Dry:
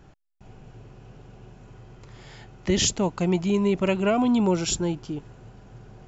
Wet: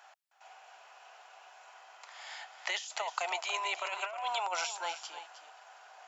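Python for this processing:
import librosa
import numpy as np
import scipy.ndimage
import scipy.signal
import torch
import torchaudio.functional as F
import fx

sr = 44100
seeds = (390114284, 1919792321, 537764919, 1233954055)

y = scipy.signal.sosfilt(scipy.signal.ellip(4, 1.0, 70, 700.0, 'highpass', fs=sr, output='sos'), x)
y = fx.over_compress(y, sr, threshold_db=-36.0, ratio=-1.0)
y = y + 10.0 ** (-11.5 / 20.0) * np.pad(y, (int(313 * sr / 1000.0), 0))[:len(y)]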